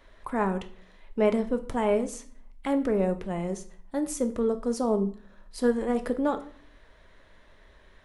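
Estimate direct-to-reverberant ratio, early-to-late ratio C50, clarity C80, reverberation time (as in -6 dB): 7.5 dB, 14.0 dB, 18.0 dB, 0.50 s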